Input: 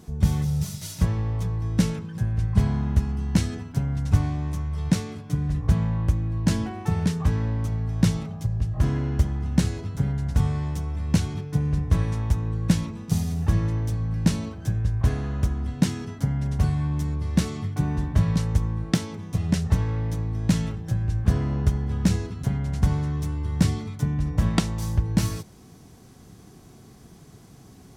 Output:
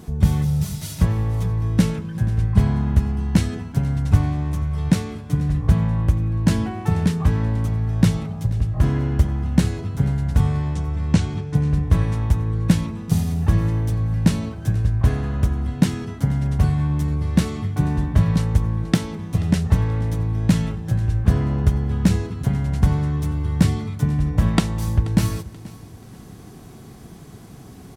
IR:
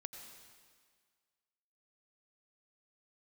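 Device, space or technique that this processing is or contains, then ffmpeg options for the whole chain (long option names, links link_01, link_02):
ducked reverb: -filter_complex "[0:a]asettb=1/sr,asplit=3[link_01][link_02][link_03];[link_01]atrim=end=10.624[link_04];[link_02]atrim=start=10.62:end=11.55,asetpts=PTS-STARTPTS,afade=type=in:duration=0.004:curve=qsin,afade=type=out:start_time=0.926:duration=0.004:curve=qsin,lowpass=frequency=8500:width=0.5412,lowpass=frequency=8500:width=1.3066[link_05];[link_03]atrim=start=11.546[link_06];[link_04][link_05]acrossfade=duration=0.004:curve1=hsin:curve2=qsin[link_07];[link_07][link_06]acrossfade=duration=0.004:curve1=qsin:curve2=hsin,asplit=3[link_08][link_09][link_10];[1:a]atrim=start_sample=2205[link_11];[link_09][link_11]afir=irnorm=-1:irlink=0[link_12];[link_10]apad=whole_len=1233284[link_13];[link_12][link_13]sidechaincompress=threshold=-33dB:ratio=8:attack=16:release=852,volume=-0.5dB[link_14];[link_08][link_14]amix=inputs=2:normalize=0,equalizer=frequency=5900:width=1.3:gain=-4.5,aecho=1:1:482|964|1446:0.106|0.0392|0.0145,volume=3.5dB"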